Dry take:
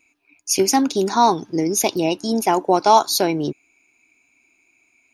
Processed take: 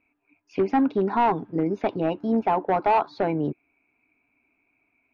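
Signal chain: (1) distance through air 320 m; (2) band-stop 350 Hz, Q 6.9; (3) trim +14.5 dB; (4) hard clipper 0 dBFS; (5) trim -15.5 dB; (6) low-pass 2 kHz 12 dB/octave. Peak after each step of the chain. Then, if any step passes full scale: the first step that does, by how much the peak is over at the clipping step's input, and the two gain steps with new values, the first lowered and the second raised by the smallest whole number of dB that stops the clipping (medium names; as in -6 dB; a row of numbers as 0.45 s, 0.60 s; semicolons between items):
-5.0 dBFS, -5.0 dBFS, +9.5 dBFS, 0.0 dBFS, -15.5 dBFS, -15.0 dBFS; step 3, 9.5 dB; step 3 +4.5 dB, step 5 -5.5 dB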